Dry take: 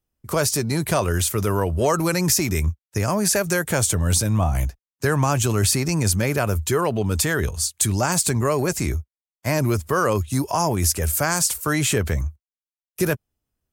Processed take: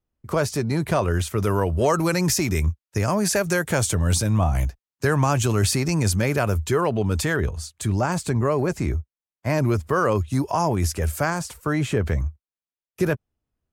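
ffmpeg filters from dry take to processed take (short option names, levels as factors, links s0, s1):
-af "asetnsamples=n=441:p=0,asendcmd='1.43 lowpass f 5600;6.56 lowpass f 3400;7.36 lowpass f 1500;9.5 lowpass f 2600;11.3 lowpass f 1200;12.02 lowpass f 2200',lowpass=f=2200:p=1"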